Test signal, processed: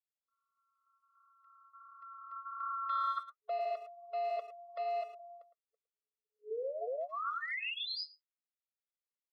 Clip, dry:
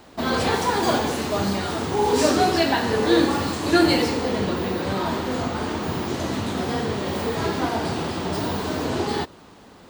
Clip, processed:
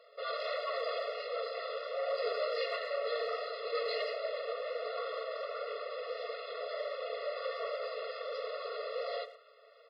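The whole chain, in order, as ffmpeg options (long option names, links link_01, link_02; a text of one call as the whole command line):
ffmpeg -i in.wav -filter_complex "[0:a]aeval=exprs='val(0)*sin(2*PI*130*n/s)':channel_layout=same,highshelf=frequency=3100:gain=-3,asoftclip=type=hard:threshold=-22.5dB,afftfilt=real='re*between(b*sr/4096,420,5300)':imag='im*between(b*sr/4096,420,5300)':win_size=4096:overlap=0.75,flanger=delay=1.3:depth=6.4:regen=-54:speed=1.4:shape=sinusoidal,asplit=2[link_01][link_02];[link_02]adelay=110,highpass=300,lowpass=3400,asoftclip=type=hard:threshold=-29dB,volume=-13dB[link_03];[link_01][link_03]amix=inputs=2:normalize=0,afftfilt=real='re*eq(mod(floor(b*sr/1024/360),2),1)':imag='im*eq(mod(floor(b*sr/1024/360),2),1)':win_size=1024:overlap=0.75" out.wav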